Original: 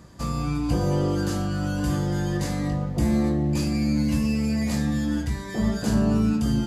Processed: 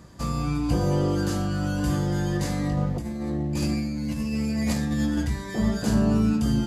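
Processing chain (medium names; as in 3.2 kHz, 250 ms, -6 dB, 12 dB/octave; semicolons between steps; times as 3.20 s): 2.77–5.27 s: compressor with a negative ratio -25 dBFS, ratio -0.5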